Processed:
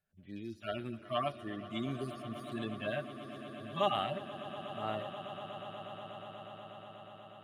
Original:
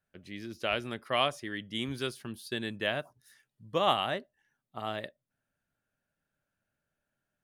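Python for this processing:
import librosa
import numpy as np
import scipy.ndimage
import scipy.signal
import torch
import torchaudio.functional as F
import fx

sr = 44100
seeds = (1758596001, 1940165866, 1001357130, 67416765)

y = fx.hpss_only(x, sr, part='harmonic')
y = fx.echo_swell(y, sr, ms=121, loudest=8, wet_db=-17.0)
y = y * 10.0 ** (-1.0 / 20.0)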